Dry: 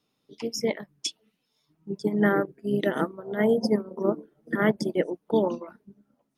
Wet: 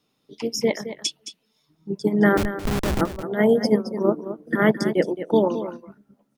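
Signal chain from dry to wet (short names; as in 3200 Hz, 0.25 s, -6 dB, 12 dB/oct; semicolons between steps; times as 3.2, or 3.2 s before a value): 2.37–3.01 Schmitt trigger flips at -25 dBFS; echo 0.218 s -11.5 dB; gain +4.5 dB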